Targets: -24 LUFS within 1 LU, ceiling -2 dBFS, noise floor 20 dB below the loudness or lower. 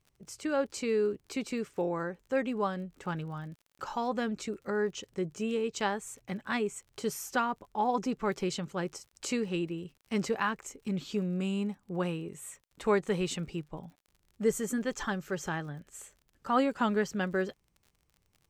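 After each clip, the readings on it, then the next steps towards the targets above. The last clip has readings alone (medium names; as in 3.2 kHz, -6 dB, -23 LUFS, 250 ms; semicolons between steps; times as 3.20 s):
tick rate 42 per s; loudness -33.0 LUFS; peak level -14.5 dBFS; loudness target -24.0 LUFS
-> de-click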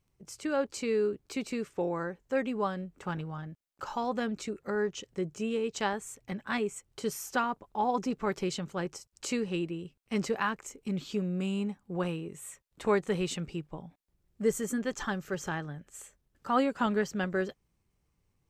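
tick rate 0.054 per s; loudness -33.0 LUFS; peak level -14.5 dBFS; loudness target -24.0 LUFS
-> trim +9 dB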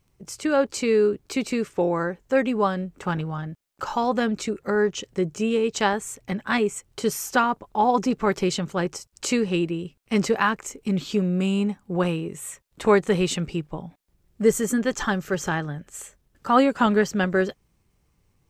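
loudness -24.0 LUFS; peak level -5.5 dBFS; noise floor -68 dBFS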